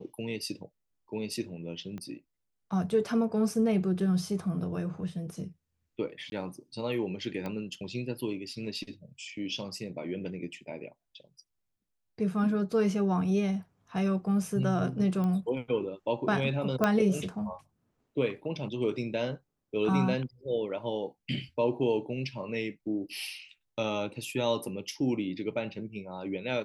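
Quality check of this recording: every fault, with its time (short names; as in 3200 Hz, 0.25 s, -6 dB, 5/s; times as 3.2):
1.98 pop -28 dBFS
6.3–6.32 gap 21 ms
7.46 pop -23 dBFS
15.24 pop -23 dBFS
16.84 pop -12 dBFS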